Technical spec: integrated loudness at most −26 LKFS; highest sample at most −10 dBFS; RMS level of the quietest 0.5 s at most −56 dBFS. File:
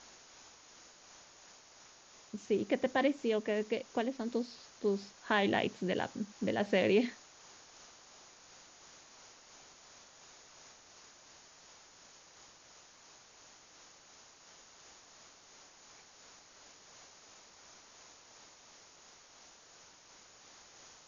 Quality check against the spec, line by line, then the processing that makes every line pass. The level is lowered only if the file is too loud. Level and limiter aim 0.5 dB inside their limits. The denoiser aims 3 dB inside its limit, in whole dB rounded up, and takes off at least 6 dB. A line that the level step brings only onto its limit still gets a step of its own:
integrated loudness −34.0 LKFS: in spec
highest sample −16.5 dBFS: in spec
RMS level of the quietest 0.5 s −59 dBFS: in spec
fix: no processing needed

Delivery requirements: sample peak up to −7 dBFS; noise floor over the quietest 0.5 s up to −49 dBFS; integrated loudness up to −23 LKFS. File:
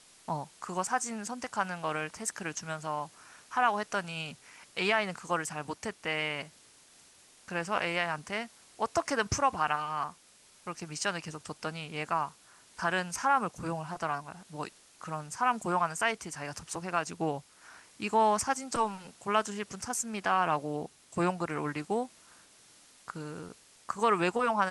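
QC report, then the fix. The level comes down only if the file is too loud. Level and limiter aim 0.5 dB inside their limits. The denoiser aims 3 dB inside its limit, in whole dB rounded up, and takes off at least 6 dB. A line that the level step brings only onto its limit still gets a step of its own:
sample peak −13.0 dBFS: in spec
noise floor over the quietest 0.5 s −60 dBFS: in spec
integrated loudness −32.5 LKFS: in spec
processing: no processing needed

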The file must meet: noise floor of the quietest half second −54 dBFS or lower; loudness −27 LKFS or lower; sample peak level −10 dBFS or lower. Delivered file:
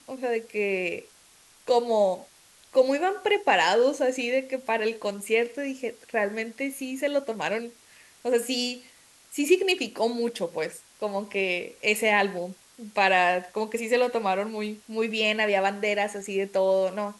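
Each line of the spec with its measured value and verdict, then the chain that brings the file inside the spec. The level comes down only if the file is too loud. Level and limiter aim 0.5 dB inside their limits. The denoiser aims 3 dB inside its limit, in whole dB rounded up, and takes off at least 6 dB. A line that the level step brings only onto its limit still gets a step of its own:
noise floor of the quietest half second −56 dBFS: in spec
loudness −26.0 LKFS: out of spec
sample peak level −8.5 dBFS: out of spec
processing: level −1.5 dB
brickwall limiter −10.5 dBFS

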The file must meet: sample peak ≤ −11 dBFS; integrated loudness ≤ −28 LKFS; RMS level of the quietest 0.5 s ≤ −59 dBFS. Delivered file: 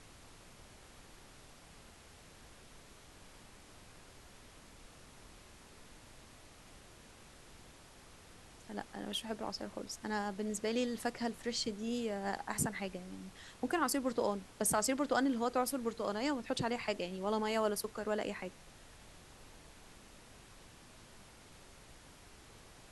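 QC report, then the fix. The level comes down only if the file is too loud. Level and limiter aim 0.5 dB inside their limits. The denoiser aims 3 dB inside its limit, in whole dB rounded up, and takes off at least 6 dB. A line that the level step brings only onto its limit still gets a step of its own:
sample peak −18.5 dBFS: in spec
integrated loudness −37.0 LKFS: in spec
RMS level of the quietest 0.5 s −57 dBFS: out of spec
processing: broadband denoise 6 dB, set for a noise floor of −57 dBFS

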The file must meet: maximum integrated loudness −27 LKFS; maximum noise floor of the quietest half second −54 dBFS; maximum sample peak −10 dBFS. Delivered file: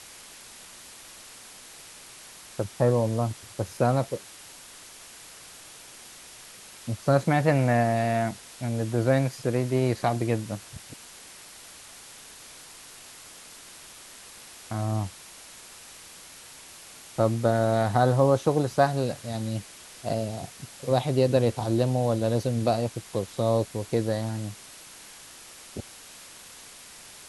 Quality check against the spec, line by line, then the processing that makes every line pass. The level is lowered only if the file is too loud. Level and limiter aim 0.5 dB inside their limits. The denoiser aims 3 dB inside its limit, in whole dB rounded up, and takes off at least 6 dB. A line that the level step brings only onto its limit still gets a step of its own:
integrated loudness −26.0 LKFS: out of spec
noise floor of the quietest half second −47 dBFS: out of spec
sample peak −7.0 dBFS: out of spec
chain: broadband denoise 9 dB, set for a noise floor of −47 dBFS
level −1.5 dB
brickwall limiter −10.5 dBFS

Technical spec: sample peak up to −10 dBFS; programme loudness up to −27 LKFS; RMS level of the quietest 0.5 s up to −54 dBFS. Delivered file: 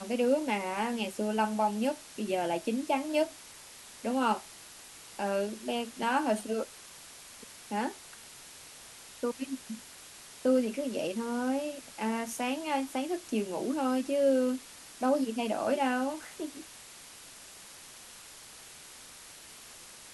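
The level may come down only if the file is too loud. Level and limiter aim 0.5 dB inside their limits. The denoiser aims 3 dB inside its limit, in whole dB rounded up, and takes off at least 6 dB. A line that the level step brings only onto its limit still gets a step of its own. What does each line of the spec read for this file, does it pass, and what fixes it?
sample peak −15.0 dBFS: in spec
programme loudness −31.5 LKFS: in spec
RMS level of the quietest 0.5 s −50 dBFS: out of spec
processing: broadband denoise 7 dB, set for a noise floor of −50 dBFS

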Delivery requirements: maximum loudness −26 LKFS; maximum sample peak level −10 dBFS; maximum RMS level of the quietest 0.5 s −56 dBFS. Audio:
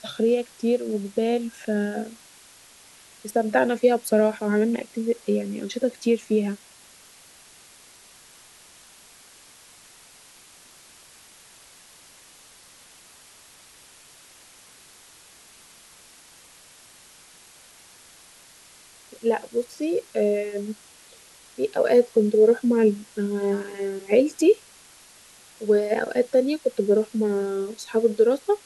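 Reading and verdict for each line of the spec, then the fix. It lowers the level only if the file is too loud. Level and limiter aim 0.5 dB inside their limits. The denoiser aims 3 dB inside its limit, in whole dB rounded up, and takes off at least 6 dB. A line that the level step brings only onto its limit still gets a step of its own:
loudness −23.5 LKFS: out of spec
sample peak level −7.0 dBFS: out of spec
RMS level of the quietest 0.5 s −51 dBFS: out of spec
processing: broadband denoise 6 dB, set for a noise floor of −51 dBFS
level −3 dB
brickwall limiter −10.5 dBFS

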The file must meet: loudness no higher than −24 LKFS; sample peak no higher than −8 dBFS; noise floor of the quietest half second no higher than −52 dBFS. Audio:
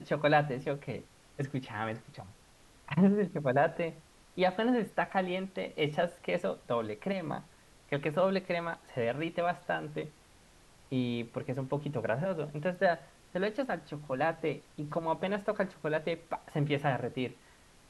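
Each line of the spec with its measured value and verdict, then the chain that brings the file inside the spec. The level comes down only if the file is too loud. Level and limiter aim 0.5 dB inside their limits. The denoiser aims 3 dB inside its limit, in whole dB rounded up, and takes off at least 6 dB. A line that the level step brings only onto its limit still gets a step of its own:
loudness −33.0 LKFS: in spec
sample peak −14.0 dBFS: in spec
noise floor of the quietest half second −60 dBFS: in spec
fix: no processing needed

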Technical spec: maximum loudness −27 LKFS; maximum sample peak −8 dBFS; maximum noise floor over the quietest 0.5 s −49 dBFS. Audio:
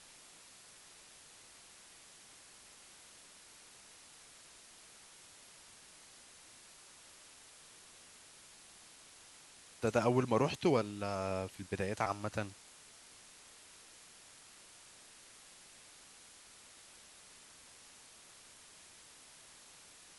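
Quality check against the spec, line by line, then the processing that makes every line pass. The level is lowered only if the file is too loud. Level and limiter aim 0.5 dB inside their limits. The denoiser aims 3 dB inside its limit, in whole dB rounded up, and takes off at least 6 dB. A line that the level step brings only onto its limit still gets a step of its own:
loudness −35.0 LKFS: in spec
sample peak −16.5 dBFS: in spec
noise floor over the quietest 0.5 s −58 dBFS: in spec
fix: no processing needed

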